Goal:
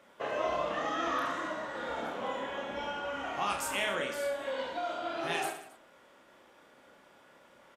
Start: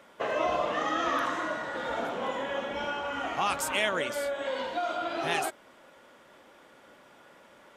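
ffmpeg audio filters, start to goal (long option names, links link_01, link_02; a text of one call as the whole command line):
ffmpeg -i in.wav -af "aecho=1:1:30|69|119.7|185.6|271.3:0.631|0.398|0.251|0.158|0.1,volume=-6dB" out.wav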